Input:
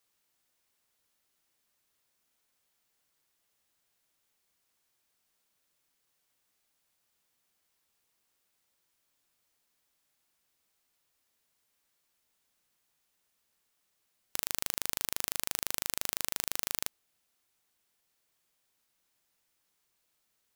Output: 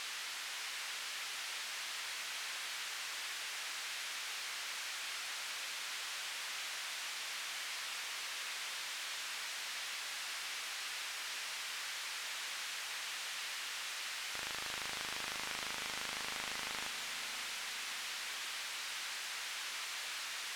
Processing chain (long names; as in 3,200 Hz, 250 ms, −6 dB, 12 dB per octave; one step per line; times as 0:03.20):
spike at every zero crossing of −14.5 dBFS
low-pass filter 2,000 Hz 12 dB per octave
tilt shelving filter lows −4 dB, about 890 Hz
feedback delay with all-pass diffusion 569 ms, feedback 59%, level −9 dB
level −3.5 dB